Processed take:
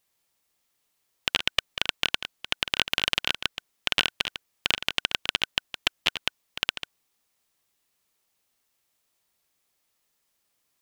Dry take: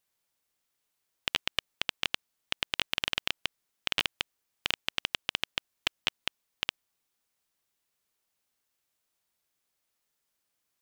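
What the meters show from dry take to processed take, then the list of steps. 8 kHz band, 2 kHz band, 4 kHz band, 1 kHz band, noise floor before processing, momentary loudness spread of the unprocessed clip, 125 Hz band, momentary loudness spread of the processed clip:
+6.0 dB, +5.5 dB, +6.0 dB, +5.5 dB, −81 dBFS, 8 LU, +6.0 dB, 8 LU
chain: delay that plays each chunk backwards 153 ms, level −10 dB
notch filter 1,500 Hz, Q 16
level +5.5 dB

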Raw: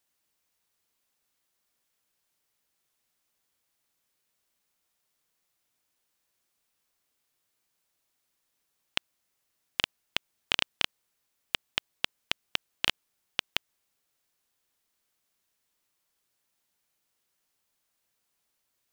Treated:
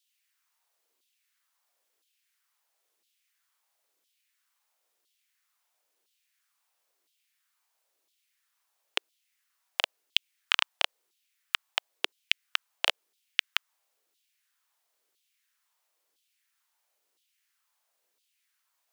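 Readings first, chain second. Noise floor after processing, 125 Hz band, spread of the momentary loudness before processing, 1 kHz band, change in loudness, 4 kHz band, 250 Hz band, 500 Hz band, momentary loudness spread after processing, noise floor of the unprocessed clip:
−78 dBFS, below −25 dB, 6 LU, +3.5 dB, +2.0 dB, +2.0 dB, −9.5 dB, +2.0 dB, 7 LU, −79 dBFS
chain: auto-filter high-pass saw down 0.99 Hz 330–3,600 Hz

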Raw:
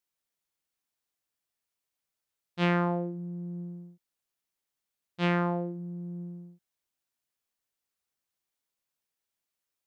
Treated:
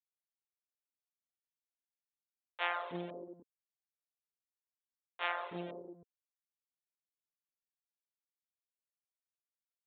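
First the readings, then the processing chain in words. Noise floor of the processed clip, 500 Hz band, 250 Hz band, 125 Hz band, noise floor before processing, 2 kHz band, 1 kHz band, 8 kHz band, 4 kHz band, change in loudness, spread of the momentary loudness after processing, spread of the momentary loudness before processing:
below −85 dBFS, −10.5 dB, −18.0 dB, −22.5 dB, below −85 dBFS, −4.5 dB, −6.0 dB, can't be measured, −4.0 dB, −8.5 dB, 21 LU, 16 LU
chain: hold until the input has moved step −27.5 dBFS
high-pass filter 430 Hz 12 dB per octave
reverb reduction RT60 1.2 s
multiband delay without the direct sound highs, lows 320 ms, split 550 Hz
downsampling to 8,000 Hz
level −2 dB

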